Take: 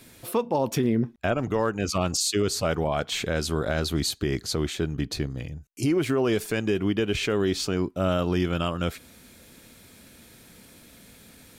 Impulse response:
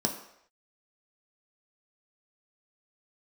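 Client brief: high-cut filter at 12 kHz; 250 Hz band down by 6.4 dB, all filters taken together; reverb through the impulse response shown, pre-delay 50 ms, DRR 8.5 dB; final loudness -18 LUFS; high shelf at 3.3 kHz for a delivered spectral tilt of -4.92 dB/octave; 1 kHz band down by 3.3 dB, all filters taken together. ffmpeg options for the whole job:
-filter_complex "[0:a]lowpass=12000,equalizer=f=250:t=o:g=-9,equalizer=f=1000:t=o:g=-3.5,highshelf=f=3300:g=-4,asplit=2[s0][s1];[1:a]atrim=start_sample=2205,adelay=50[s2];[s1][s2]afir=irnorm=-1:irlink=0,volume=0.168[s3];[s0][s3]amix=inputs=2:normalize=0,volume=3.35"

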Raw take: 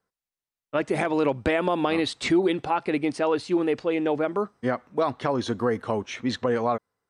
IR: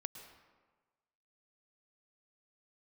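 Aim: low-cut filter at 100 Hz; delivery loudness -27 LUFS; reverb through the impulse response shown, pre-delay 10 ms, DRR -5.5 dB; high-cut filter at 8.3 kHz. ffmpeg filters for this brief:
-filter_complex "[0:a]highpass=100,lowpass=8300,asplit=2[s0][s1];[1:a]atrim=start_sample=2205,adelay=10[s2];[s1][s2]afir=irnorm=-1:irlink=0,volume=2.66[s3];[s0][s3]amix=inputs=2:normalize=0,volume=0.398"

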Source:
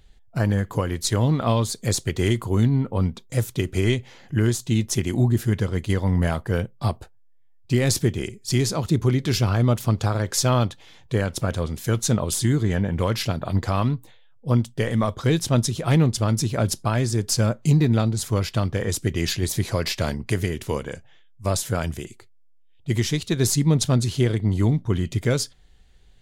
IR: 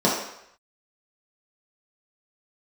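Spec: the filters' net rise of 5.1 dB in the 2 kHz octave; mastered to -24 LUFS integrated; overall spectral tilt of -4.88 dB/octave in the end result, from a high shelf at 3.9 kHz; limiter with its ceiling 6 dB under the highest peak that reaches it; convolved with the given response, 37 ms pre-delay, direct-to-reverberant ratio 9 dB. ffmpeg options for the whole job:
-filter_complex "[0:a]equalizer=f=2000:t=o:g=5,highshelf=f=3900:g=5,alimiter=limit=0.282:level=0:latency=1,asplit=2[s0][s1];[1:a]atrim=start_sample=2205,adelay=37[s2];[s1][s2]afir=irnorm=-1:irlink=0,volume=0.0447[s3];[s0][s3]amix=inputs=2:normalize=0,volume=0.841"

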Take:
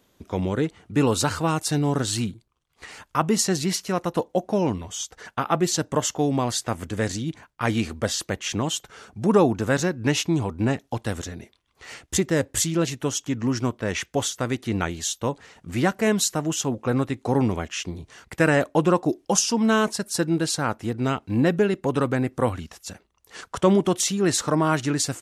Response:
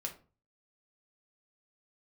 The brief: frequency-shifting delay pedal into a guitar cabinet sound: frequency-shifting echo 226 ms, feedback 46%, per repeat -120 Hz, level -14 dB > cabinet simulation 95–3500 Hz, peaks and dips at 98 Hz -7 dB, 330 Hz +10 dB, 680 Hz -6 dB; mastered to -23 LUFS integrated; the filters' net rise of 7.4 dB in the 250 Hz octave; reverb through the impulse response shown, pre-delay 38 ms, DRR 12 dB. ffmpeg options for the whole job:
-filter_complex "[0:a]equalizer=f=250:t=o:g=4,asplit=2[s0][s1];[1:a]atrim=start_sample=2205,adelay=38[s2];[s1][s2]afir=irnorm=-1:irlink=0,volume=0.266[s3];[s0][s3]amix=inputs=2:normalize=0,asplit=5[s4][s5][s6][s7][s8];[s5]adelay=226,afreqshift=-120,volume=0.2[s9];[s6]adelay=452,afreqshift=-240,volume=0.0923[s10];[s7]adelay=678,afreqshift=-360,volume=0.0422[s11];[s8]adelay=904,afreqshift=-480,volume=0.0195[s12];[s4][s9][s10][s11][s12]amix=inputs=5:normalize=0,highpass=95,equalizer=f=98:t=q:w=4:g=-7,equalizer=f=330:t=q:w=4:g=10,equalizer=f=680:t=q:w=4:g=-6,lowpass=f=3500:w=0.5412,lowpass=f=3500:w=1.3066,volume=0.668"

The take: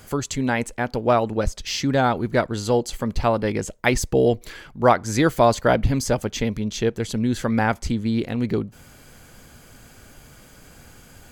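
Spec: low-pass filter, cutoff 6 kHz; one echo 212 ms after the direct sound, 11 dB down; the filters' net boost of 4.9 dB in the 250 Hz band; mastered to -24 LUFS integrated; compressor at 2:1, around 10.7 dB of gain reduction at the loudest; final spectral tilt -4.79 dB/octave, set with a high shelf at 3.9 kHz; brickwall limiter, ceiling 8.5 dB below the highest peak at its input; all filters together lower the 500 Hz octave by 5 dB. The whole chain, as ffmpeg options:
-af "lowpass=6000,equalizer=f=250:t=o:g=7.5,equalizer=f=500:t=o:g=-8.5,highshelf=f=3900:g=6.5,acompressor=threshold=0.0251:ratio=2,alimiter=limit=0.0841:level=0:latency=1,aecho=1:1:212:0.282,volume=2.51"

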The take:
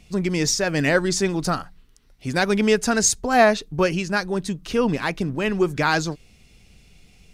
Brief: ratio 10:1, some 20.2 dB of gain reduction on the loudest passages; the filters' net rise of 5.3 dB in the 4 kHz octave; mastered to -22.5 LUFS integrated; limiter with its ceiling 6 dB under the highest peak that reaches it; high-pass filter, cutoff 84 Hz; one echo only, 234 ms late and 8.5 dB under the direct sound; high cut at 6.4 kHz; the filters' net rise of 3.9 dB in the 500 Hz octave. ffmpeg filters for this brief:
-af "highpass=84,lowpass=6400,equalizer=f=500:t=o:g=5,equalizer=f=4000:t=o:g=8,acompressor=threshold=0.0316:ratio=10,alimiter=level_in=1.06:limit=0.0631:level=0:latency=1,volume=0.944,aecho=1:1:234:0.376,volume=3.98"

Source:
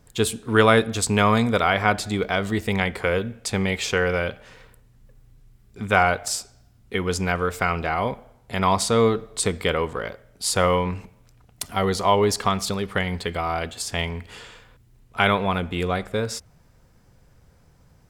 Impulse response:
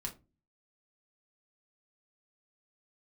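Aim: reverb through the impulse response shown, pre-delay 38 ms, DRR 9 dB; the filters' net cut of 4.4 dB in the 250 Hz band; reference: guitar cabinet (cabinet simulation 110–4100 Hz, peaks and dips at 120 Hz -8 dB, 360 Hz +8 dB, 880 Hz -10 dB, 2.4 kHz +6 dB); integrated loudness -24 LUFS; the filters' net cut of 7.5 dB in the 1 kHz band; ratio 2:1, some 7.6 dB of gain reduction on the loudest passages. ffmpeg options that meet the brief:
-filter_complex "[0:a]equalizer=f=250:t=o:g=-7.5,equalizer=f=1000:t=o:g=-6.5,acompressor=threshold=0.0398:ratio=2,asplit=2[s0][s1];[1:a]atrim=start_sample=2205,adelay=38[s2];[s1][s2]afir=irnorm=-1:irlink=0,volume=0.398[s3];[s0][s3]amix=inputs=2:normalize=0,highpass=110,equalizer=f=120:t=q:w=4:g=-8,equalizer=f=360:t=q:w=4:g=8,equalizer=f=880:t=q:w=4:g=-10,equalizer=f=2400:t=q:w=4:g=6,lowpass=f=4100:w=0.5412,lowpass=f=4100:w=1.3066,volume=1.88"

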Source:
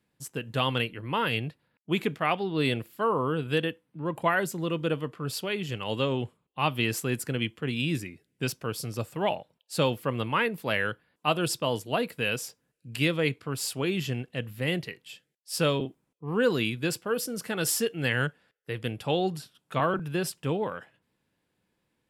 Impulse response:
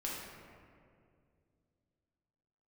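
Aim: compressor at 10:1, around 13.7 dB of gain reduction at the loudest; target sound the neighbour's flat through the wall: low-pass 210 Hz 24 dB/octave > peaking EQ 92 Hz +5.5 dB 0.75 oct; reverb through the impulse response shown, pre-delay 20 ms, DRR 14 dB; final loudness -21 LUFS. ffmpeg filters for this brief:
-filter_complex "[0:a]acompressor=threshold=0.02:ratio=10,asplit=2[s0][s1];[1:a]atrim=start_sample=2205,adelay=20[s2];[s1][s2]afir=irnorm=-1:irlink=0,volume=0.158[s3];[s0][s3]amix=inputs=2:normalize=0,lowpass=f=210:w=0.5412,lowpass=f=210:w=1.3066,equalizer=f=92:t=o:w=0.75:g=5.5,volume=15"

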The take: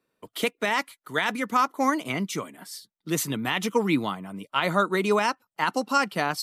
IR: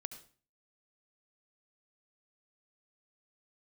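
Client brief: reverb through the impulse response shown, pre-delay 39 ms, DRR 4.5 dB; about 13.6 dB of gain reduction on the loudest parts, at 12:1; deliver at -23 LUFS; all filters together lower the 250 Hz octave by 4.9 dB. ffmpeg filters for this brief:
-filter_complex "[0:a]equalizer=f=250:t=o:g=-6.5,acompressor=threshold=0.0282:ratio=12,asplit=2[s0][s1];[1:a]atrim=start_sample=2205,adelay=39[s2];[s1][s2]afir=irnorm=-1:irlink=0,volume=0.841[s3];[s0][s3]amix=inputs=2:normalize=0,volume=4.22"

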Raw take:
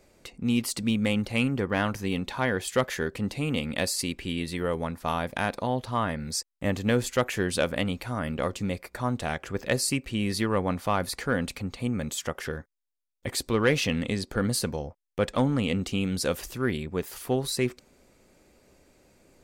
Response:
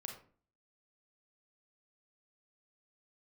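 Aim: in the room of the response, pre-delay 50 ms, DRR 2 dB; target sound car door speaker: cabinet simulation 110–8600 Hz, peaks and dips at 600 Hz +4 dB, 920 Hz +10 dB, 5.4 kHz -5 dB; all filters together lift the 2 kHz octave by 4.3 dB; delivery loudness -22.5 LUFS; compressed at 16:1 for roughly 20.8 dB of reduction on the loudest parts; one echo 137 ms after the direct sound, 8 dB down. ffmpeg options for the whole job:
-filter_complex "[0:a]equalizer=f=2000:t=o:g=5,acompressor=threshold=0.0126:ratio=16,aecho=1:1:137:0.398,asplit=2[s0][s1];[1:a]atrim=start_sample=2205,adelay=50[s2];[s1][s2]afir=irnorm=-1:irlink=0,volume=1.12[s3];[s0][s3]amix=inputs=2:normalize=0,highpass=110,equalizer=f=600:t=q:w=4:g=4,equalizer=f=920:t=q:w=4:g=10,equalizer=f=5400:t=q:w=4:g=-5,lowpass=f=8600:w=0.5412,lowpass=f=8600:w=1.3066,volume=7.08"

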